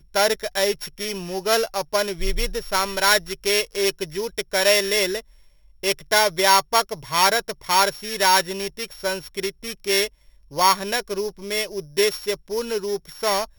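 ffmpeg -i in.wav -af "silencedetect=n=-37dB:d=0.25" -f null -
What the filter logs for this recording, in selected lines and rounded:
silence_start: 5.20
silence_end: 5.83 | silence_duration: 0.63
silence_start: 10.08
silence_end: 10.51 | silence_duration: 0.44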